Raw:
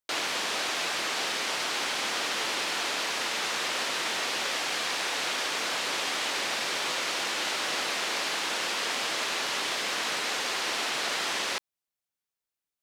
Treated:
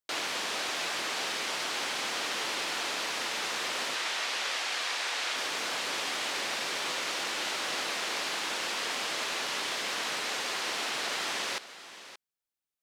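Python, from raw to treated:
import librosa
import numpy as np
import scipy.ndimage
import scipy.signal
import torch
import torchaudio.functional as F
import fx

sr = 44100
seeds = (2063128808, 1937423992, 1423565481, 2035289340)

y = fx.weighting(x, sr, curve='A', at=(3.95, 5.36))
y = y + 10.0 ** (-14.5 / 20.0) * np.pad(y, (int(576 * sr / 1000.0), 0))[:len(y)]
y = y * 10.0 ** (-3.0 / 20.0)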